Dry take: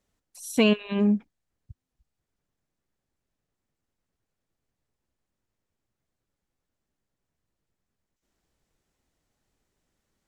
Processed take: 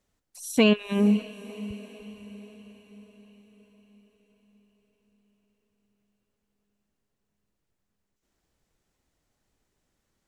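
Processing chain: echo that smears into a reverb 521 ms, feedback 54%, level -16 dB; trim +1 dB

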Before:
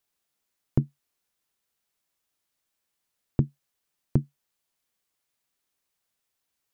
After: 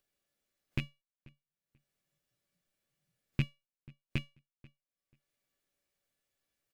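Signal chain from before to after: rattle on loud lows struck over -21 dBFS, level -12 dBFS; 0.82–3.44 s: peaking EQ 160 Hz +6.5 dB 0.91 oct; spectral noise reduction 14 dB; peaking EQ 1 kHz -9.5 dB 0.6 oct; feedback comb 570 Hz, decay 0.25 s, harmonics all, mix 80%; upward compressor, threshold -37 dBFS; gate -58 dBFS, range -12 dB; feedback delay 487 ms, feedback 19%, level -23 dB; tape noise reduction on one side only decoder only; trim +1 dB

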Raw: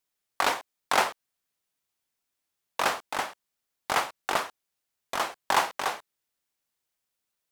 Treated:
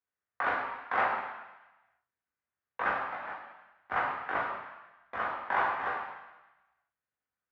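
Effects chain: 3.15–3.91 s: compressor with a negative ratio -40 dBFS, ratio -1; four-pole ladder low-pass 2.2 kHz, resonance 35%; reverberation RT60 1.0 s, pre-delay 3 ms, DRR -3.5 dB; trim -7 dB

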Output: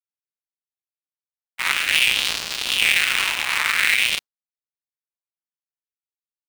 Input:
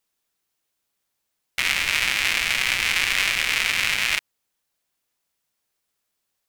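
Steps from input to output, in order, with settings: 1.72–3.46 s: frequency shift +310 Hz; LFO high-pass sine 0.51 Hz 880–4500 Hz; in parallel at -5 dB: sample-rate reducer 6.1 kHz, jitter 0%; on the sum: expander -17 dBFS; warped record 78 rpm, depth 100 cents; trim -2 dB

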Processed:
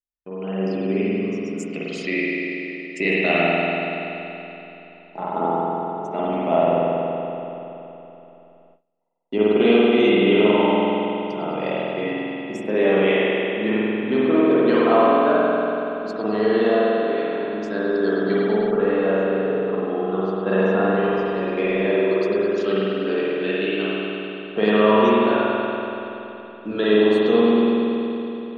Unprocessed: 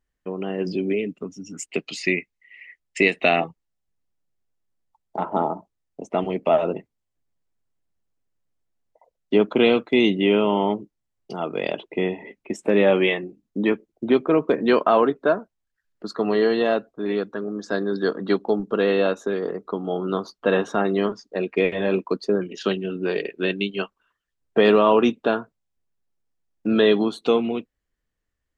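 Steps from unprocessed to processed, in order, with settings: spring tank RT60 3.4 s, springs 47 ms, chirp 65 ms, DRR -8.5 dB; gate with hold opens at -34 dBFS; 18.70–21.24 s: low-pass 1.9 kHz -> 3.9 kHz 12 dB/octave; trim -6.5 dB

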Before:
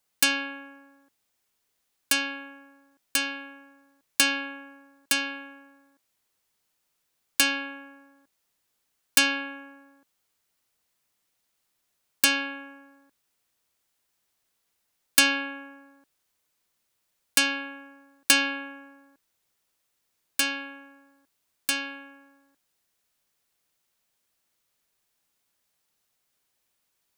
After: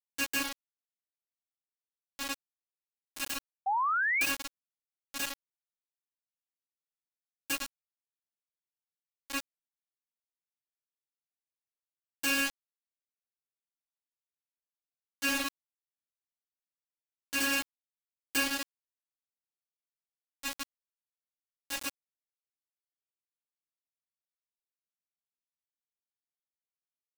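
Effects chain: granulator 100 ms, grains 20 per s, pitch spread up and down by 0 st; high-pass 300 Hz 12 dB/octave; reverberation RT60 0.50 s, pre-delay 47 ms; bit crusher 4-bit; painted sound rise, 3.66–4.26 s, 750–2600 Hz -21 dBFS; trim -7.5 dB

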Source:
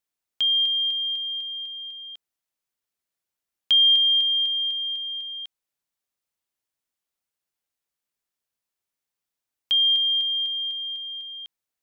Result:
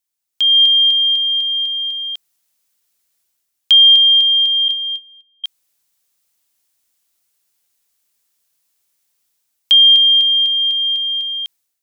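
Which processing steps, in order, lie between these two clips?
4.68–5.44 s: gate -28 dBFS, range -40 dB; treble shelf 3.2 kHz +11.5 dB; level rider gain up to 12 dB; trim -3 dB

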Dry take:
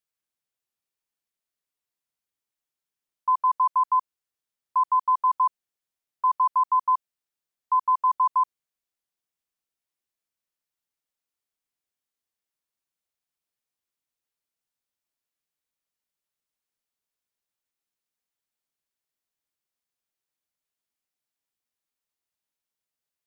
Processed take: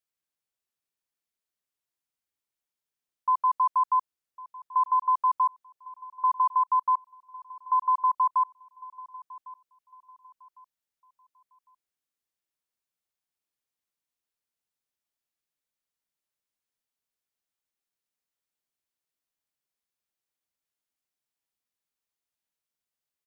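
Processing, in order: on a send: feedback delay 1104 ms, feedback 32%, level -20 dB; on the sum: trim -2 dB

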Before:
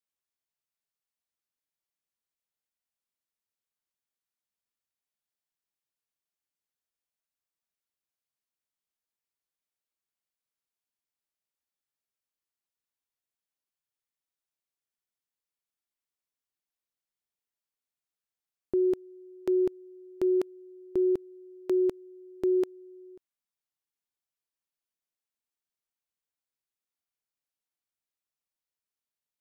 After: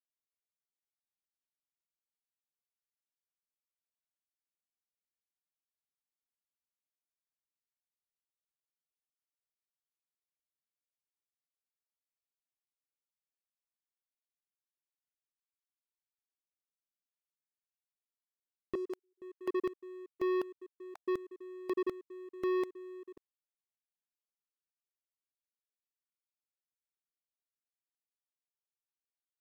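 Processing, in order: random holes in the spectrogram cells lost 25%; 18.75–19.22 s: high-pass 860 Hz 12 dB/octave; waveshaping leveller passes 3; trim -8.5 dB

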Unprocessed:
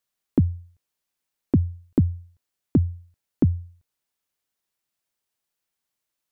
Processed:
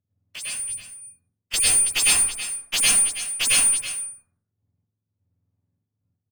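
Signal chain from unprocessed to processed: spectrum inverted on a logarithmic axis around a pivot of 900 Hz; peak limiter -18 dBFS, peak gain reduction 8.5 dB; waveshaping leveller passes 3; trance gate "xxx..x..xx...xx" 127 bpm -12 dB; delay 325 ms -11.5 dB; Chebyshev shaper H 2 -10 dB, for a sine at -16 dBFS; plate-style reverb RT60 0.65 s, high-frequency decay 0.45×, pre-delay 90 ms, DRR -6 dB

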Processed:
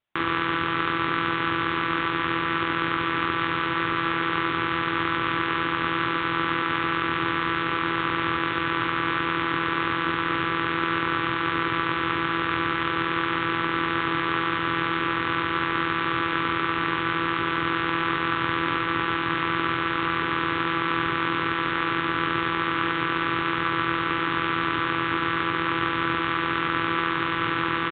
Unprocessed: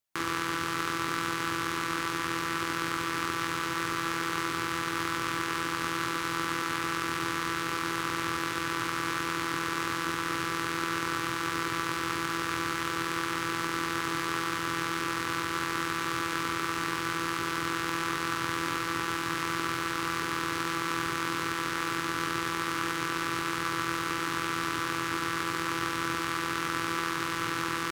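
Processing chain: resampled via 8 kHz; trim +6.5 dB

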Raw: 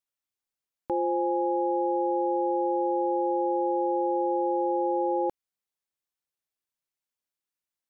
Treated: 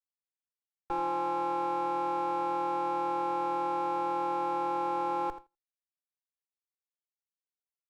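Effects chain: comb filter that takes the minimum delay 2.6 ms; on a send: feedback delay 84 ms, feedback 28%, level -13 dB; on the sum: gate with hold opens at -31 dBFS; fifteen-band graphic EQ 100 Hz -3 dB, 250 Hz -11 dB, 1 kHz +5 dB; trim -4 dB

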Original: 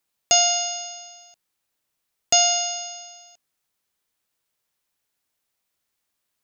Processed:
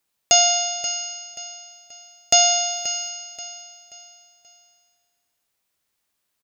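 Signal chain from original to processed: 2.66–3.09 s: word length cut 10-bit, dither none; feedback delay 531 ms, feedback 37%, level -13 dB; trim +2 dB

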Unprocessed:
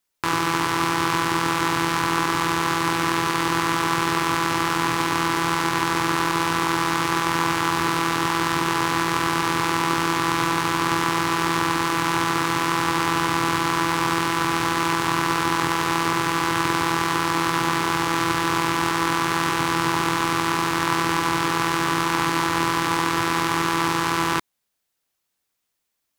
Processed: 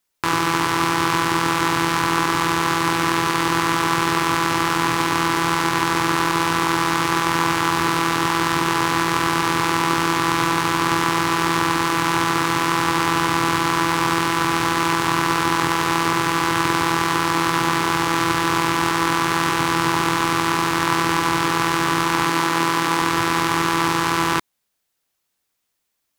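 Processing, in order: 22.26–23.02 s: high-pass 140 Hz 24 dB/octave; trim +2.5 dB

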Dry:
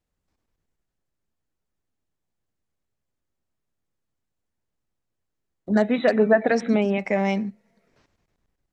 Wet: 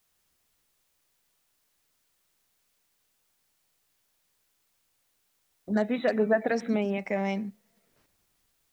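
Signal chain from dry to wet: added noise white -67 dBFS; trim -6.5 dB

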